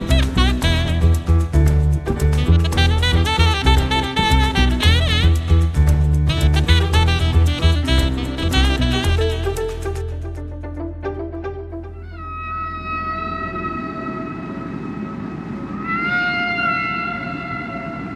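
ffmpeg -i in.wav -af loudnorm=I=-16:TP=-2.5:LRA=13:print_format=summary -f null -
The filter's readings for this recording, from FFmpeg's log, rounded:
Input Integrated:    -19.0 LUFS
Input True Peak:      -1.1 dBTP
Input LRA:             9.8 LU
Input Threshold:     -29.2 LUFS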